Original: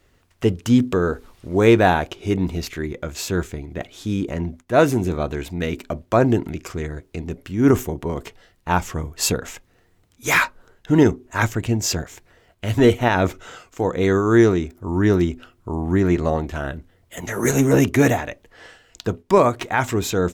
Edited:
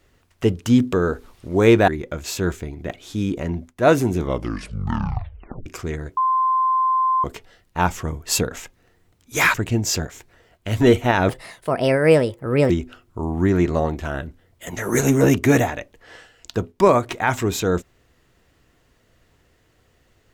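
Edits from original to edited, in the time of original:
1.88–2.79 s: delete
5.05 s: tape stop 1.52 s
7.08–8.15 s: bleep 1.04 kHz -15.5 dBFS
10.45–11.51 s: delete
13.26–15.20 s: speed 138%

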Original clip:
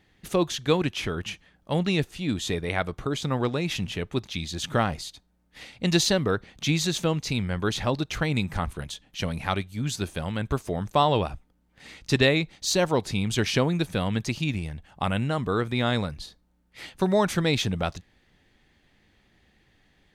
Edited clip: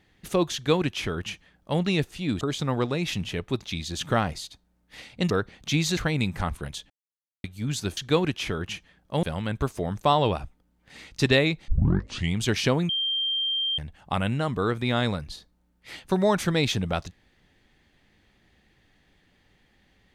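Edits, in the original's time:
0.54–1.80 s: copy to 10.13 s
2.41–3.04 s: delete
5.93–6.25 s: delete
6.92–8.13 s: delete
9.06–9.60 s: mute
12.58 s: tape start 0.69 s
13.79–14.68 s: bleep 3.17 kHz -23.5 dBFS

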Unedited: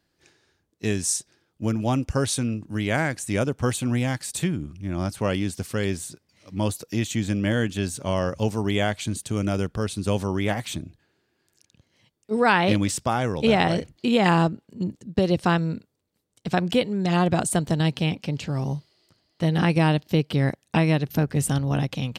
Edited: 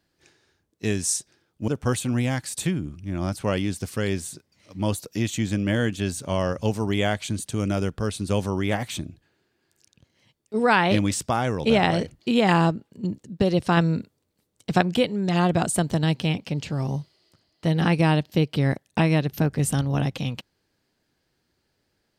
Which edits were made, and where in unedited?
1.68–3.45 s: delete
15.54–16.58 s: gain +3.5 dB

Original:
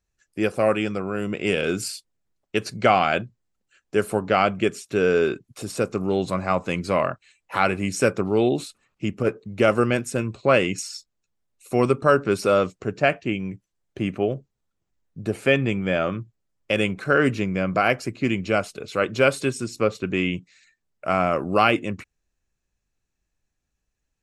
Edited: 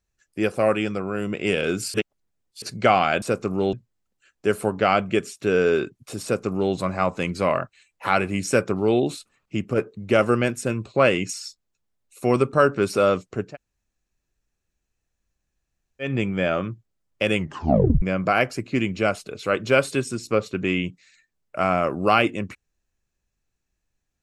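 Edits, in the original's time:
1.94–2.62 s: reverse
5.72–6.23 s: copy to 3.22 s
12.98–15.56 s: room tone, crossfade 0.16 s
16.86 s: tape stop 0.65 s

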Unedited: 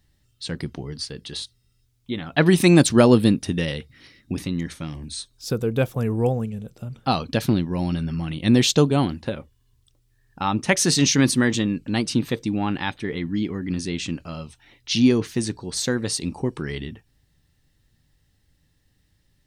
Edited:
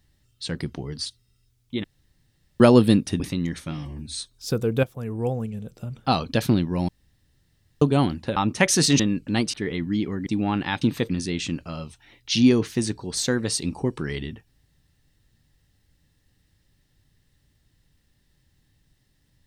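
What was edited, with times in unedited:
1.06–1.42 s: delete
2.20–2.96 s: room tone
3.56–4.34 s: delete
4.85–5.14 s: stretch 1.5×
5.83–6.75 s: fade in, from -13 dB
7.88–8.81 s: room tone
9.36–10.45 s: delete
11.08–11.59 s: delete
12.13–12.41 s: swap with 12.96–13.69 s

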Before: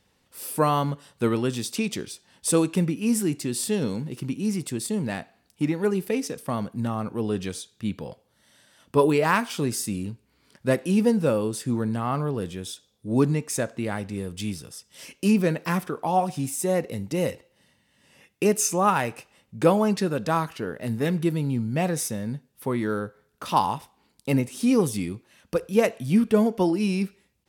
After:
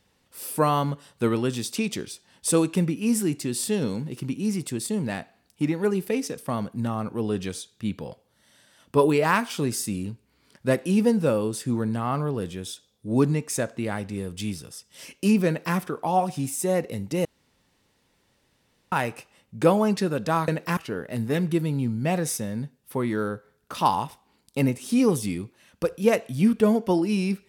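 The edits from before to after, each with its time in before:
15.47–15.76 s: copy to 20.48 s
17.25–18.92 s: room tone

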